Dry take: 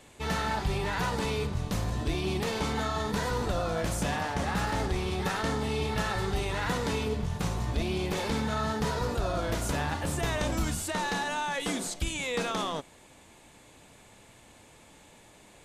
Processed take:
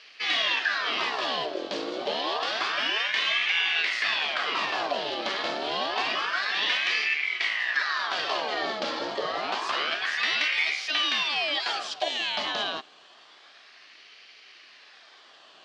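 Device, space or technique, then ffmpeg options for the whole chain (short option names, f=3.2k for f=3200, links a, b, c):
voice changer toy: -af "aeval=exprs='val(0)*sin(2*PI*1300*n/s+1300*0.7/0.28*sin(2*PI*0.28*n/s))':c=same,highpass=510,equalizer=f=510:t=q:w=4:g=-7,equalizer=f=910:t=q:w=4:g=-8,equalizer=f=1.4k:t=q:w=4:g=-7,equalizer=f=2.1k:t=q:w=4:g=-5,equalizer=f=3.2k:t=q:w=4:g=4,equalizer=f=4.6k:t=q:w=4:g=4,lowpass=f=4.7k:w=0.5412,lowpass=f=4.7k:w=1.3066,volume=9dB"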